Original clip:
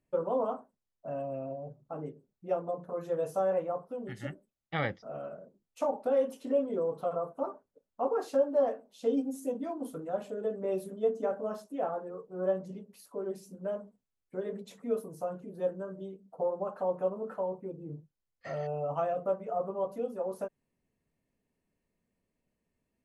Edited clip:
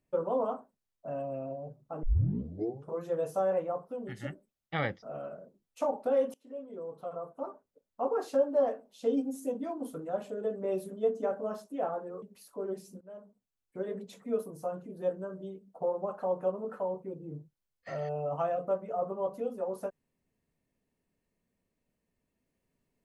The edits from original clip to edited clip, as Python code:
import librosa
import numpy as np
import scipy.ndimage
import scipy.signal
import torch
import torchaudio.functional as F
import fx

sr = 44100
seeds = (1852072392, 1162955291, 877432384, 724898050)

y = fx.edit(x, sr, fx.tape_start(start_s=2.03, length_s=0.97),
    fx.fade_in_from(start_s=6.34, length_s=1.86, floor_db=-21.0),
    fx.cut(start_s=12.22, length_s=0.58),
    fx.fade_in_from(start_s=13.59, length_s=0.77, floor_db=-20.5), tone=tone)